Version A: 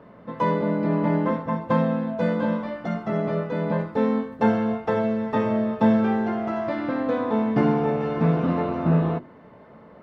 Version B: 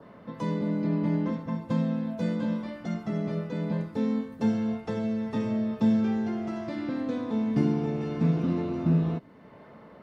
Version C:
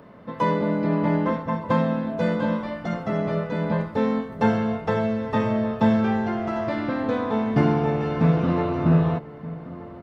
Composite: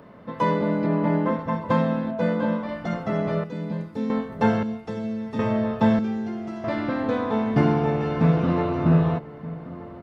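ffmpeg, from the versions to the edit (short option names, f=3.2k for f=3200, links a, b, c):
-filter_complex "[0:a]asplit=2[a][b];[1:a]asplit=3[c][d][e];[2:a]asplit=6[f][g][h][i][j][k];[f]atrim=end=0.862[l];[a]atrim=start=0.858:end=1.392[m];[g]atrim=start=1.388:end=2.112[n];[b]atrim=start=2.108:end=2.692[o];[h]atrim=start=2.688:end=3.442[p];[c]atrim=start=3.438:end=4.102[q];[i]atrim=start=4.098:end=4.632[r];[d]atrim=start=4.628:end=5.392[s];[j]atrim=start=5.388:end=5.992[t];[e]atrim=start=5.988:end=6.642[u];[k]atrim=start=6.638[v];[l][m]acrossfade=d=0.004:c1=hsin:c2=hsin[w];[w][n]acrossfade=d=0.004:c1=hsin:c2=hsin[x];[x][o]acrossfade=d=0.004:c1=hsin:c2=hsin[y];[y][p]acrossfade=d=0.004:c1=hsin:c2=hsin[z];[z][q]acrossfade=d=0.004:c1=hsin:c2=hsin[aa];[aa][r]acrossfade=d=0.004:c1=hsin:c2=hsin[ab];[ab][s]acrossfade=d=0.004:c1=hsin:c2=hsin[ac];[ac][t]acrossfade=d=0.004:c1=hsin:c2=hsin[ad];[ad][u]acrossfade=d=0.004:c1=hsin:c2=hsin[ae];[ae][v]acrossfade=d=0.004:c1=hsin:c2=hsin"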